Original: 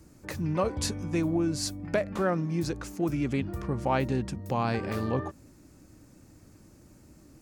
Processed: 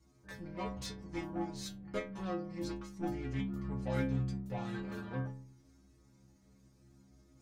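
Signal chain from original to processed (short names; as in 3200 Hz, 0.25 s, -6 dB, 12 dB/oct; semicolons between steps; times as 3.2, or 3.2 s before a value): high shelf 11000 Hz -11 dB; reverse; upward compressor, threshold -49 dBFS; reverse; added harmonics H 8 -22 dB, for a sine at -14.5 dBFS; metallic resonator 63 Hz, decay 0.83 s, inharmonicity 0.008; formant shift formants -2 st; gain +1.5 dB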